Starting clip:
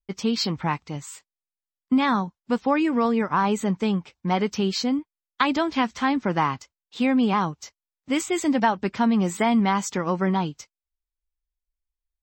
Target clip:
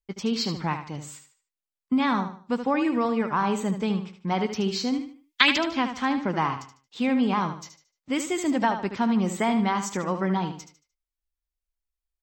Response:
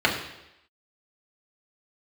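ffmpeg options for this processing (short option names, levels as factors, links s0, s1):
-filter_complex "[0:a]asettb=1/sr,asplit=3[s0][s1][s2];[s0]atrim=end=4.934[s3];[s1]atrim=start=4.93:end=5.58,asetpts=PTS-STARTPTS,afade=t=in:d=0.004:c=qsin,afade=t=out:st=0.646:d=0.004:c=qsin,highshelf=f=1600:t=q:w=1.5:g=11[s4];[s2]atrim=start=5.576[s5];[s3][s4]acrossfade=d=0.004:c1=hsin:c2=qsin[s6];[s6][s5]acrossfade=d=0.004:c1=qsin:c2=hsin,asplit=2[s7][s8];[s8]aecho=0:1:75|150|225|300:0.355|0.114|0.0363|0.0116[s9];[s7][s9]amix=inputs=2:normalize=0,volume=0.708"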